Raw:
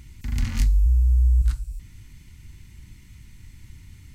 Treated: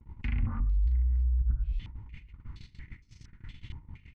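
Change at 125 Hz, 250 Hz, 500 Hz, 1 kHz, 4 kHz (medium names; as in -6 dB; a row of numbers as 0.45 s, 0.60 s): -8.0 dB, -4.5 dB, -4.5 dB, -1.0 dB, -11.0 dB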